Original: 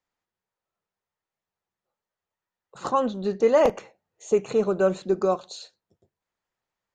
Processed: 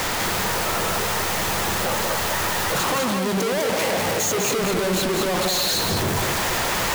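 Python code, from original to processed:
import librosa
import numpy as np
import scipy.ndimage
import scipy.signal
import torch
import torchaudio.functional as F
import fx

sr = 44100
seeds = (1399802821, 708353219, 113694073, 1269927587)

y = np.sign(x) * np.sqrt(np.mean(np.square(x)))
y = fx.highpass(y, sr, hz=120.0, slope=6, at=(2.84, 4.55))
y = y + 10.0 ** (-4.0 / 20.0) * np.pad(y, (int(201 * sr / 1000.0), 0))[:len(y)]
y = y * 10.0 ** (4.5 / 20.0)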